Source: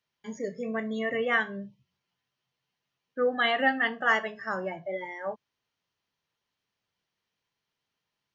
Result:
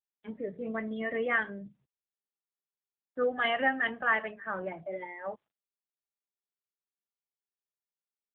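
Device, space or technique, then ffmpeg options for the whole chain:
mobile call with aggressive noise cancelling: -filter_complex "[0:a]asplit=3[link_01][link_02][link_03];[link_01]afade=type=out:start_time=3.3:duration=0.02[link_04];[link_02]equalizer=frequency=320:width=2.6:gain=-2.5,afade=type=in:start_time=3.3:duration=0.02,afade=type=out:start_time=4.63:duration=0.02[link_05];[link_03]afade=type=in:start_time=4.63:duration=0.02[link_06];[link_04][link_05][link_06]amix=inputs=3:normalize=0,highpass=frequency=130:width=0.5412,highpass=frequency=130:width=1.3066,afftdn=noise_reduction=26:noise_floor=-54,volume=-2dB" -ar 8000 -c:a libopencore_amrnb -b:a 7950

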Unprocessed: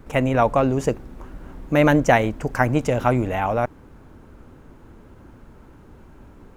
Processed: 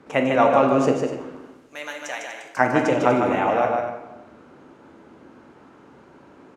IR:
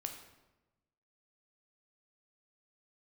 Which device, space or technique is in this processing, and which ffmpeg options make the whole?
supermarket ceiling speaker: -filter_complex "[0:a]asettb=1/sr,asplit=3[link_01][link_02][link_03];[link_01]atrim=end=1.354[link_04];[link_02]atrim=start=1.35:end=2.57,asetpts=PTS-STARTPTS,afade=type=in:duration=0.004:curve=qsin,afade=type=out:start_time=1.216:duration=0.004:curve=qsin,aderivative[link_05];[link_03]atrim=start=2.566[link_06];[link_04][link_05]acrossfade=duration=0.004:curve1=hsin:curve2=qsin[link_07];[link_07][link_06]acrossfade=duration=0.004:curve1=qsin:curve2=hsin,highpass=240,lowpass=6600,aecho=1:1:151.6|244.9:0.562|0.251[link_08];[1:a]atrim=start_sample=2205[link_09];[link_08][link_09]afir=irnorm=-1:irlink=0,volume=3dB"

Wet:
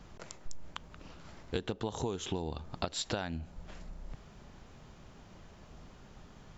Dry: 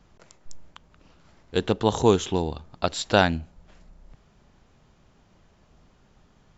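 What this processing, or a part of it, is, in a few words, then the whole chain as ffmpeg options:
serial compression, leveller first: -af "acompressor=threshold=-24dB:ratio=2.5,acompressor=threshold=-37dB:ratio=8,volume=5dB"

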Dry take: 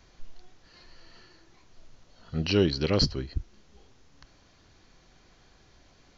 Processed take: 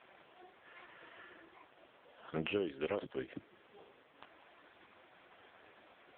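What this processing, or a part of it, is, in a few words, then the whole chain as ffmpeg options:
voicemail: -af "highpass=410,lowpass=3100,acompressor=threshold=-40dB:ratio=10,volume=8.5dB" -ar 8000 -c:a libopencore_amrnb -b:a 4750

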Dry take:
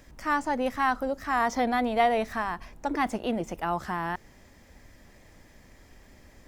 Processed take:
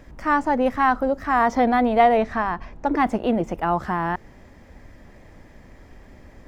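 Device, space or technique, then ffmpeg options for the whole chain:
through cloth: -filter_complex "[0:a]highshelf=frequency=3100:gain=-14,asettb=1/sr,asplit=3[link_01][link_02][link_03];[link_01]atrim=end=2.174[link_04];[link_02]atrim=start=2.17:end=2.94,asetpts=PTS-STARTPTS,afade=type=in:duration=0.004:curve=qsin,afade=type=out:start_time=0.766:duration=0.004:curve=qsin,lowpass=7200[link_05];[link_03]atrim=start=2.936[link_06];[link_04][link_05]acrossfade=duration=0.004:curve1=hsin:curve2=qsin[link_07];[link_07][link_06]acrossfade=duration=0.004:curve1=qsin:curve2=hsin,volume=8dB"

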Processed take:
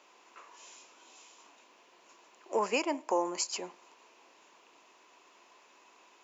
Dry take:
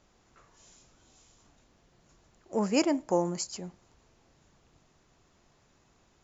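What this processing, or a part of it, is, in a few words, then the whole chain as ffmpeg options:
laptop speaker: -af "highpass=frequency=320:width=0.5412,highpass=frequency=320:width=1.3066,equalizer=frequency=1000:width_type=o:width=0.28:gain=11,equalizer=frequency=2600:width_type=o:width=0.55:gain=9.5,alimiter=limit=-23dB:level=0:latency=1:release=456,volume=4dB"

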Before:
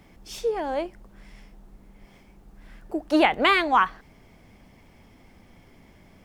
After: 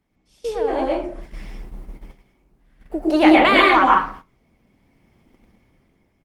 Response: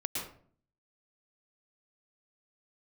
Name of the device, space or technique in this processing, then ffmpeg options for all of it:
speakerphone in a meeting room: -filter_complex "[1:a]atrim=start_sample=2205[link_01];[0:a][link_01]afir=irnorm=-1:irlink=0,asplit=2[link_02][link_03];[link_03]adelay=240,highpass=300,lowpass=3400,asoftclip=type=hard:threshold=-13.5dB,volume=-30dB[link_04];[link_02][link_04]amix=inputs=2:normalize=0,dynaudnorm=framelen=250:gausssize=9:maxgain=14dB,agate=range=-16dB:threshold=-34dB:ratio=16:detection=peak,volume=-1dB" -ar 48000 -c:a libopus -b:a 24k

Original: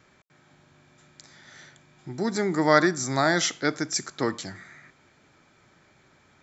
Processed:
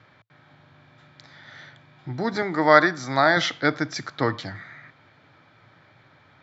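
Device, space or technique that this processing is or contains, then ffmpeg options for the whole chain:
guitar cabinet: -filter_complex "[0:a]asettb=1/sr,asplit=3[link_01][link_02][link_03];[link_01]atrim=end=2.424[link_04];[link_02]atrim=start=2.42:end=3.37,asetpts=PTS-STARTPTS,afade=type=in:duration=0.004:curve=qsin,afade=type=out:start_time=0.946:duration=0.004:curve=qsin,highpass=frequency=280:poles=1[link_05];[link_03]atrim=start=3.366[link_06];[link_04][link_05]acrossfade=duration=0.004:curve1=hsin:curve2=qsin[link_07];[link_07][link_06]acrossfade=duration=0.004:curve1=qsin:curve2=hsin,highpass=99,equalizer=frequency=110:width_type=q:width=4:gain=8,equalizer=frequency=210:width_type=q:width=4:gain=-8,equalizer=frequency=380:width_type=q:width=4:gain=-8,equalizer=frequency=2600:width_type=q:width=4:gain=-4,lowpass=frequency=4100:width=0.5412,lowpass=frequency=4100:width=1.3066,volume=5.5dB"

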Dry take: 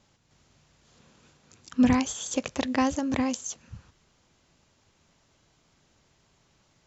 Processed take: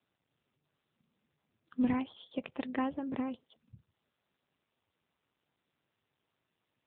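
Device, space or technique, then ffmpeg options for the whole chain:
mobile call with aggressive noise cancelling: -af "highpass=frequency=100:poles=1,afftdn=noise_reduction=18:noise_floor=-47,volume=-8dB" -ar 8000 -c:a libopencore_amrnb -b:a 7950

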